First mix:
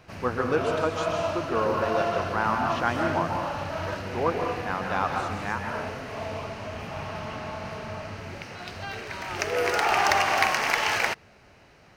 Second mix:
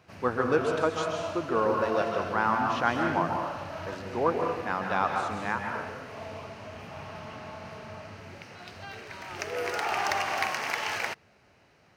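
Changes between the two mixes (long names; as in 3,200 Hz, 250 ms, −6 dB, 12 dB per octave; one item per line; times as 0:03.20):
background −6.5 dB
master: add high-pass filter 71 Hz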